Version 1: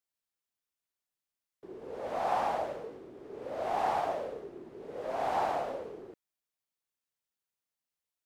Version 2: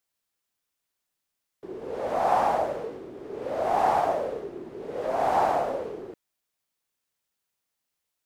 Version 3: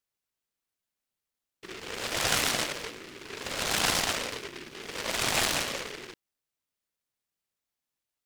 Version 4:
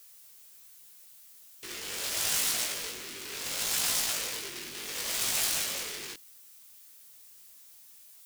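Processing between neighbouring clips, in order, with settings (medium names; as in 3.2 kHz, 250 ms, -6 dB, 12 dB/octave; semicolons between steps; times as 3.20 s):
dynamic bell 3.2 kHz, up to -5 dB, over -49 dBFS, Q 0.8; trim +8 dB
delay time shaken by noise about 2 kHz, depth 0.39 ms; trim -4.5 dB
chorus 0.76 Hz, delay 17.5 ms, depth 3.2 ms; power-law waveshaper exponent 0.5; pre-emphasis filter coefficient 0.8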